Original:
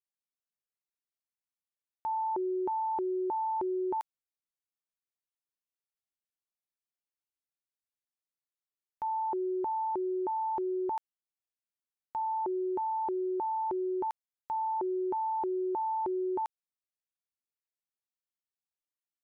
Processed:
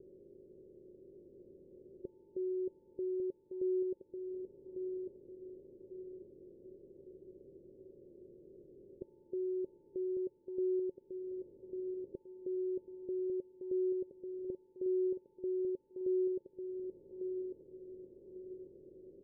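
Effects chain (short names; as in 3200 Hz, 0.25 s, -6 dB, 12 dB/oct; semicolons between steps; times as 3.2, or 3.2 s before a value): per-bin compression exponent 0.4; compressor 2.5:1, threshold -52 dBFS, peak gain reduction 14.5 dB; rippled Chebyshev low-pass 560 Hz, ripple 3 dB; feedback echo 1.148 s, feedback 36%, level -6 dB; gain +9.5 dB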